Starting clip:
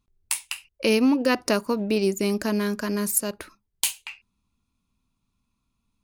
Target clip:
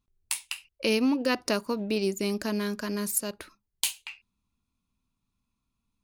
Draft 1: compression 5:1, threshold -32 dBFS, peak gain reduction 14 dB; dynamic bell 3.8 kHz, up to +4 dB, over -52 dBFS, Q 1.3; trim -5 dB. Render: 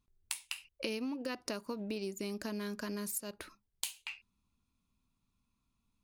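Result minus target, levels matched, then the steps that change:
compression: peak gain reduction +14 dB
remove: compression 5:1, threshold -32 dBFS, peak gain reduction 14 dB

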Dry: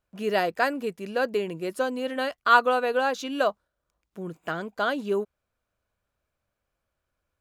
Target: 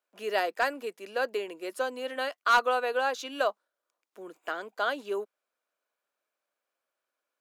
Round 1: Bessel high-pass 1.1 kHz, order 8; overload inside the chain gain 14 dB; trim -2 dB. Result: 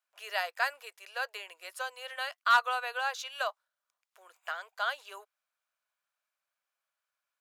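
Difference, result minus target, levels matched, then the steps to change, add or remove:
500 Hz band -9.5 dB
change: Bessel high-pass 450 Hz, order 8

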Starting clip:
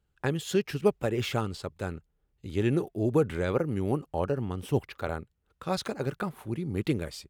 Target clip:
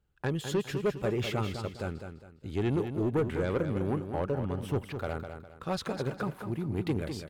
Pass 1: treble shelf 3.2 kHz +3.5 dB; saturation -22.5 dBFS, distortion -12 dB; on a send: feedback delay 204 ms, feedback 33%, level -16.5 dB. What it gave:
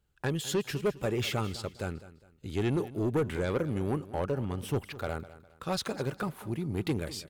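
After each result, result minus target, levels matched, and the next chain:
8 kHz band +6.5 dB; echo-to-direct -8.5 dB
treble shelf 3.2 kHz -5 dB; saturation -22.5 dBFS, distortion -12 dB; on a send: feedback delay 204 ms, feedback 33%, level -16.5 dB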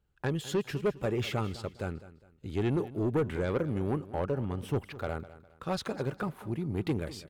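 echo-to-direct -8.5 dB
treble shelf 3.2 kHz -5 dB; saturation -22.5 dBFS, distortion -12 dB; on a send: feedback delay 204 ms, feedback 33%, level -8 dB

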